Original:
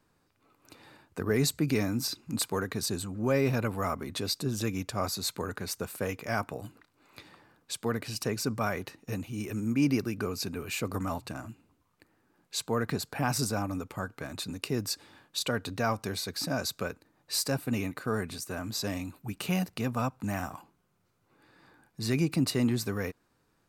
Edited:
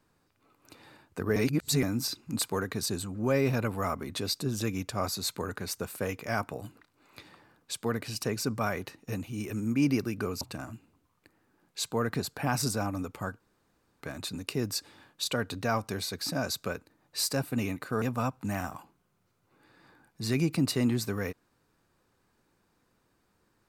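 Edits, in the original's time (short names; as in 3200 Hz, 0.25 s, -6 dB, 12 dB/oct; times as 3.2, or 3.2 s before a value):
1.36–1.83 reverse
10.41–11.17 cut
14.16 insert room tone 0.61 s
18.17–19.81 cut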